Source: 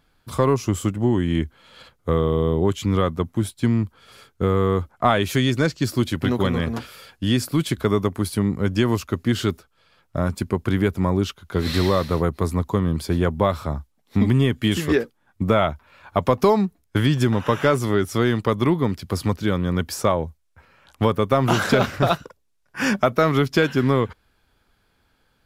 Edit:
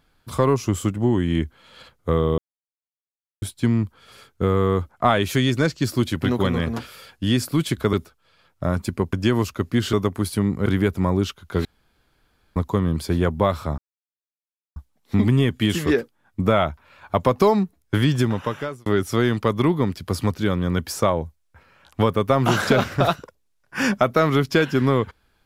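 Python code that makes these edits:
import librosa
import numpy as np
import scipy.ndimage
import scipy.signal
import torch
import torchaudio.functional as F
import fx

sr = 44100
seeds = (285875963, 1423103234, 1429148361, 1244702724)

y = fx.edit(x, sr, fx.silence(start_s=2.38, length_s=1.04),
    fx.swap(start_s=7.93, length_s=0.73, other_s=9.46, other_length_s=1.2),
    fx.room_tone_fill(start_s=11.65, length_s=0.91),
    fx.insert_silence(at_s=13.78, length_s=0.98),
    fx.fade_out_span(start_s=17.18, length_s=0.7), tone=tone)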